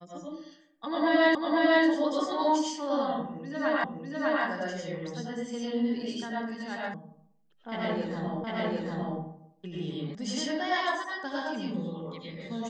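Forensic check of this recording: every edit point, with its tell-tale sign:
0:01.35: the same again, the last 0.5 s
0:03.84: the same again, the last 0.6 s
0:06.94: cut off before it has died away
0:08.44: the same again, the last 0.75 s
0:10.15: cut off before it has died away

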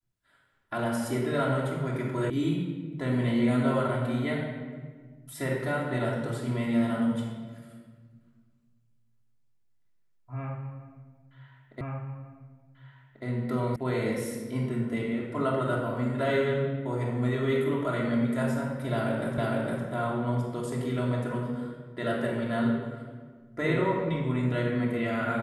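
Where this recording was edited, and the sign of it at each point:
0:02.30: cut off before it has died away
0:11.81: the same again, the last 1.44 s
0:13.76: cut off before it has died away
0:19.38: the same again, the last 0.46 s

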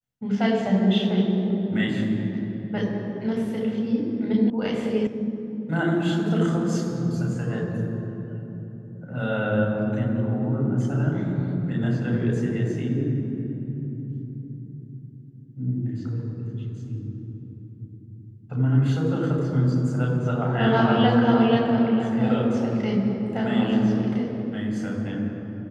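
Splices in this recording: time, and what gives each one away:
0:04.50: cut off before it has died away
0:05.07: cut off before it has died away

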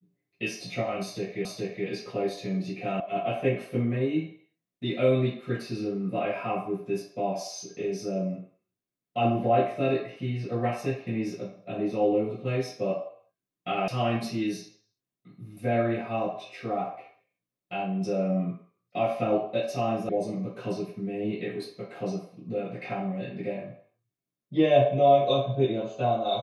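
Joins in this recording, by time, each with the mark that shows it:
0:01.45: the same again, the last 0.42 s
0:03.00: cut off before it has died away
0:13.88: cut off before it has died away
0:20.09: cut off before it has died away

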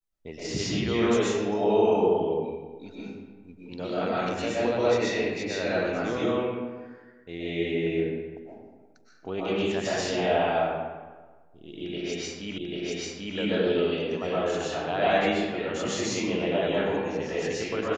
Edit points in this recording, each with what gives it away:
0:12.58: the same again, the last 0.79 s

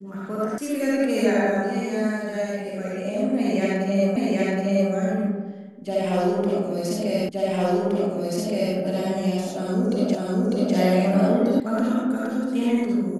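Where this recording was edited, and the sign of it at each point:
0:00.58: cut off before it has died away
0:04.16: the same again, the last 0.77 s
0:07.29: the same again, the last 1.47 s
0:10.15: the same again, the last 0.6 s
0:11.60: cut off before it has died away

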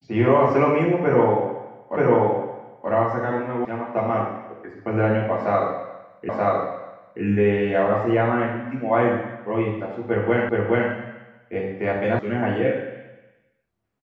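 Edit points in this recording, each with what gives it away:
0:01.97: the same again, the last 0.93 s
0:03.65: cut off before it has died away
0:06.29: the same again, the last 0.93 s
0:10.49: the same again, the last 0.42 s
0:12.19: cut off before it has died away

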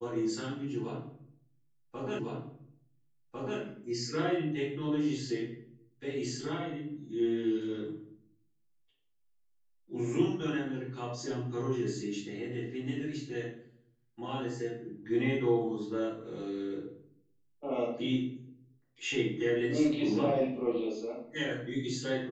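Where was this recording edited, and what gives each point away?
0:02.19: the same again, the last 1.4 s

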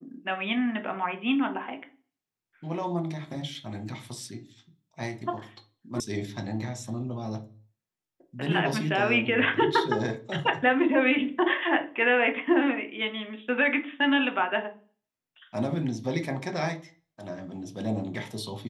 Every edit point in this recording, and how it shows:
0:06.00: cut off before it has died away

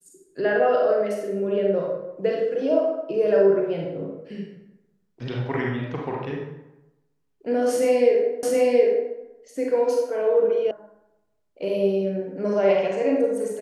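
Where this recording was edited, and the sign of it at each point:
0:08.43: the same again, the last 0.72 s
0:10.71: cut off before it has died away

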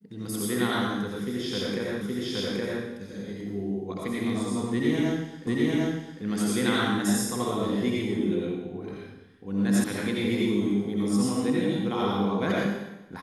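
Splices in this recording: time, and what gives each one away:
0:02.01: the same again, the last 0.82 s
0:05.47: the same again, the last 0.75 s
0:09.84: cut off before it has died away

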